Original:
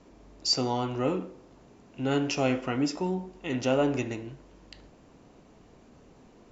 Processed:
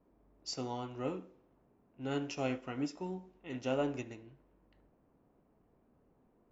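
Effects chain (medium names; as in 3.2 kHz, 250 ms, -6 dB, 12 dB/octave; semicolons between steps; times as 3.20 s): level-controlled noise filter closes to 1.3 kHz, open at -25.5 dBFS; band-stop 4.7 kHz, Q 20; upward expansion 1.5:1, over -36 dBFS; trim -7.5 dB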